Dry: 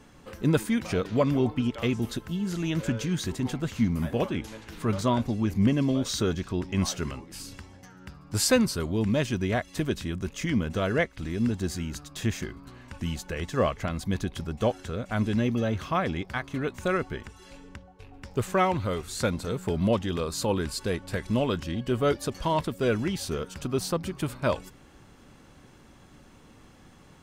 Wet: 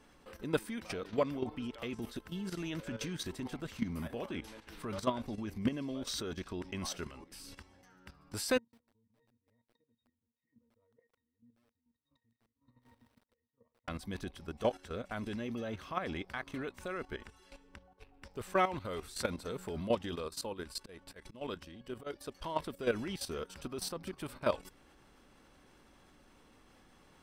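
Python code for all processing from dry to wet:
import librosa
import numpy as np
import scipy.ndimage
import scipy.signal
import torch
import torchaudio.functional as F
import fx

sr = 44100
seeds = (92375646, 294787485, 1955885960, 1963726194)

y = fx.chain(x, sr, fx.gate_flip(shuts_db=-29.0, range_db=-28),
    fx.octave_resonator(note='A#', decay_s=0.15),
    fx.echo_crushed(ms=149, feedback_pct=35, bits=10, wet_db=-4), at=(8.58, 13.88))
y = fx.chain(y, sr, fx.level_steps(step_db=11),
    fx.auto_swell(attack_ms=131.0), at=(20.15, 22.43))
y = fx.peak_eq(y, sr, hz=120.0, db=-9.0, octaves=1.6)
y = fx.notch(y, sr, hz=6800.0, q=6.7)
y = fx.level_steps(y, sr, step_db=12)
y = y * librosa.db_to_amplitude(-2.5)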